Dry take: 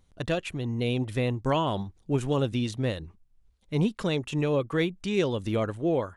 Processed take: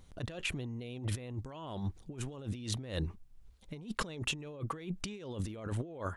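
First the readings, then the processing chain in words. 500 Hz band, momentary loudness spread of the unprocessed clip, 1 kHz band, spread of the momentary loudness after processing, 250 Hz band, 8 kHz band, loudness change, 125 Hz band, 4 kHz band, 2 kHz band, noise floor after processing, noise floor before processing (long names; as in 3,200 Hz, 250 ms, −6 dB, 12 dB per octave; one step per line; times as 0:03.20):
−16.5 dB, 5 LU, −11.5 dB, 6 LU, −13.0 dB, +1.5 dB, −11.0 dB, −9.0 dB, −6.0 dB, −7.0 dB, −58 dBFS, −64 dBFS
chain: compressor whose output falls as the input rises −38 dBFS, ratio −1
level −2.5 dB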